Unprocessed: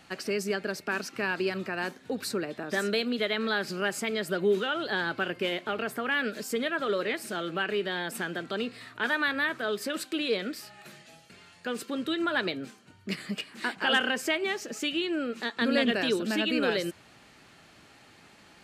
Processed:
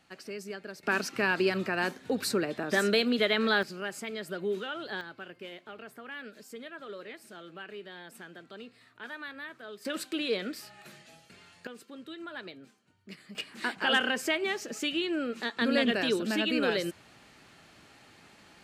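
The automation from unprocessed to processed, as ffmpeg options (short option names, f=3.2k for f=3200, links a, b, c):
-af "asetnsamples=n=441:p=0,asendcmd='0.83 volume volume 2.5dB;3.63 volume volume -7dB;5.01 volume volume -14dB;9.85 volume volume -2dB;11.67 volume volume -13.5dB;13.35 volume volume -1dB',volume=-10dB"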